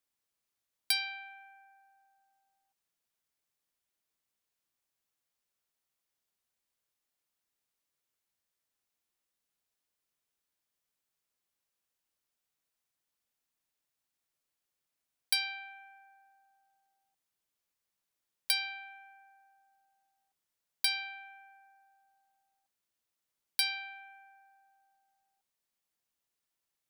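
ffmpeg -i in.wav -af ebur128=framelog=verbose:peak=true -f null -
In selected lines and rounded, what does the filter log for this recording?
Integrated loudness:
  I:         -33.2 LUFS
  Threshold: -46.6 LUFS
Loudness range:
  LRA:         3.0 LU
  Threshold: -60.0 LUFS
  LRA low:   -40.1 LUFS
  LRA high:  -37.1 LUFS
True peak:
  Peak:      -12.8 dBFS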